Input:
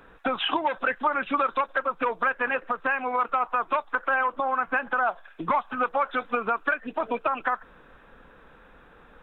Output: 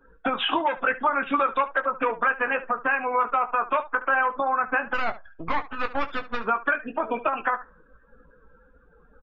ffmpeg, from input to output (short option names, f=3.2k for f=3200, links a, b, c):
-filter_complex "[0:a]asplit=3[a][b][c];[a]afade=t=out:st=4.93:d=0.02[d];[b]aeval=exprs='max(val(0),0)':c=same,afade=t=in:st=4.93:d=0.02,afade=t=out:st=6.43:d=0.02[e];[c]afade=t=in:st=6.43:d=0.02[f];[d][e][f]amix=inputs=3:normalize=0,afftdn=nr=27:nf=-46,aecho=1:1:18|72:0.398|0.158,volume=1dB"